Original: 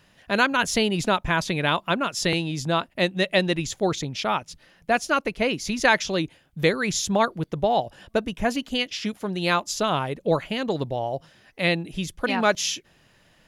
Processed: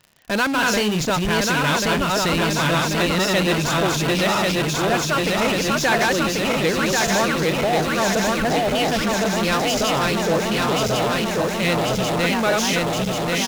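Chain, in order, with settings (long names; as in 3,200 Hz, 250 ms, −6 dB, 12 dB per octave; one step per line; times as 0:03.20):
feedback delay that plays each chunk backwards 544 ms, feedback 77%, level −1.5 dB
downsampling to 16,000 Hz
in parallel at −5 dB: fuzz pedal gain 44 dB, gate −38 dBFS
0:00.51–0:01.07: on the sum: double-tracking delay 38 ms −8 dB
surface crackle 58 per second −28 dBFS
level −5.5 dB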